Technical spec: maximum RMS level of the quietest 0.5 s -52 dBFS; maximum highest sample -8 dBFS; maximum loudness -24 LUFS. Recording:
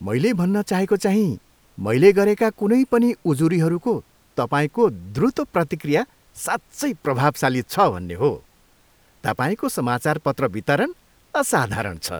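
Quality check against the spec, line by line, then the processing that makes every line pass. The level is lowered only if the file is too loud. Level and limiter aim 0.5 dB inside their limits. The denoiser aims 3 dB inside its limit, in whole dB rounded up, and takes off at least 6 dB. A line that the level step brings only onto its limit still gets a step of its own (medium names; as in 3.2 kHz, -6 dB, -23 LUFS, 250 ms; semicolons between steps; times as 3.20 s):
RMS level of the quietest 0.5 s -57 dBFS: pass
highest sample -2.5 dBFS: fail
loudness -21.0 LUFS: fail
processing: trim -3.5 dB; peak limiter -8.5 dBFS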